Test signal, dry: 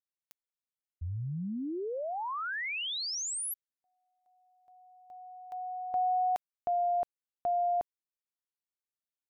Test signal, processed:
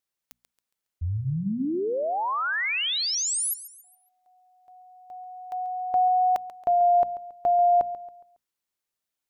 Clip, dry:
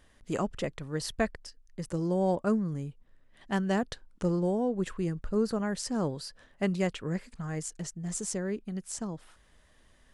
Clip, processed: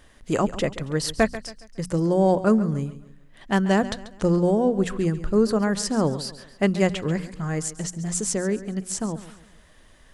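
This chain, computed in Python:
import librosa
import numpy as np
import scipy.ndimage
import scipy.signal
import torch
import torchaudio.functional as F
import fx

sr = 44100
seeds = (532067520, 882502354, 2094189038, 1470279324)

y = fx.hum_notches(x, sr, base_hz=60, count=4)
y = fx.echo_feedback(y, sr, ms=138, feedback_pct=39, wet_db=-15)
y = F.gain(torch.from_numpy(y), 8.5).numpy()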